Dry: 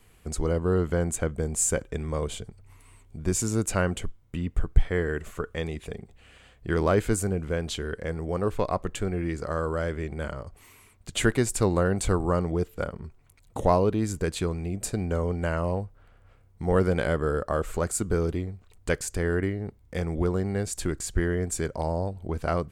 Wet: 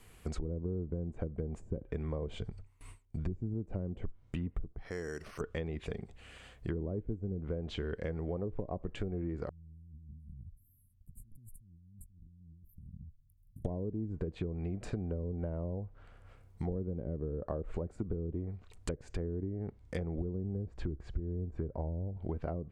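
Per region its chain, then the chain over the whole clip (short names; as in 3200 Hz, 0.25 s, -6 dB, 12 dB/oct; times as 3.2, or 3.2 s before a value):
2.41–3.54 gate with hold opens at -41 dBFS, closes at -51 dBFS + low shelf 130 Hz +6 dB
4.72–5.41 low shelf 79 Hz -12 dB + compressor 2:1, threshold -43 dBFS + careless resampling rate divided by 6×, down filtered, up hold
9.49–13.65 inverse Chebyshev band-stop 550–6200 Hz, stop band 50 dB + passive tone stack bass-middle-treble 6-0-2 + negative-ratio compressor -53 dBFS
20.43–22.17 LPF 1200 Hz 6 dB/oct + bell 66 Hz +6 dB 1.1 oct
whole clip: dynamic EQ 1300 Hz, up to -7 dB, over -45 dBFS, Q 1.4; treble ducked by the level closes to 370 Hz, closed at -22 dBFS; compressor, threshold -33 dBFS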